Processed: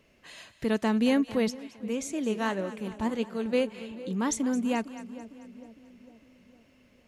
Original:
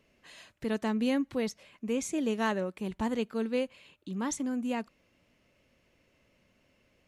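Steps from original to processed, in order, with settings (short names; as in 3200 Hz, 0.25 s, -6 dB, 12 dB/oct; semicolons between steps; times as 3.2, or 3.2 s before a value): split-band echo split 640 Hz, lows 0.455 s, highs 0.219 s, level -14.5 dB; 1.5–3.53 flange 1.7 Hz, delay 2.8 ms, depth 8.7 ms, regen +74%; gain +4.5 dB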